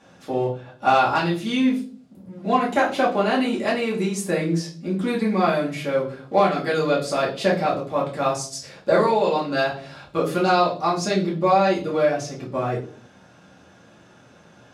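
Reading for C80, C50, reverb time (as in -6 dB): 14.0 dB, 8.5 dB, 0.50 s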